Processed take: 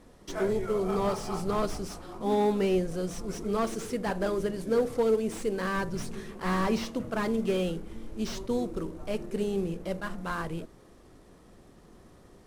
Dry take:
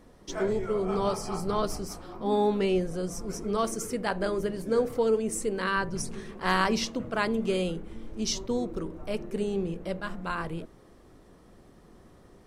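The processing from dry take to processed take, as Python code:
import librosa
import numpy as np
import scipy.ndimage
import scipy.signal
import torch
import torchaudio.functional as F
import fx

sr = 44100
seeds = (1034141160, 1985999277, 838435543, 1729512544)

y = fx.cvsd(x, sr, bps=64000)
y = fx.slew_limit(y, sr, full_power_hz=53.0)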